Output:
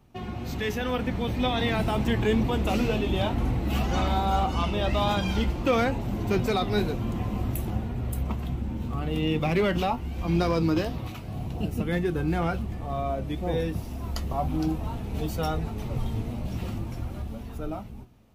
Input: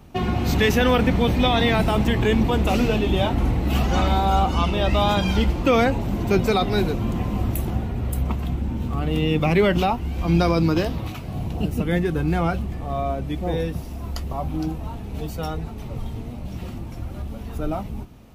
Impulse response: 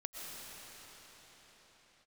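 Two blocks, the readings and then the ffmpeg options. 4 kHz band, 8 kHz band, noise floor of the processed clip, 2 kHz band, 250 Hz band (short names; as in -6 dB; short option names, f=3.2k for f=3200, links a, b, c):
-6.0 dB, -5.5 dB, -38 dBFS, -6.0 dB, -5.0 dB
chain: -af "dynaudnorm=f=210:g=13:m=15dB,volume=4.5dB,asoftclip=hard,volume=-4.5dB,flanger=delay=7.8:depth=1.8:regen=76:speed=2:shape=sinusoidal,volume=-7.5dB"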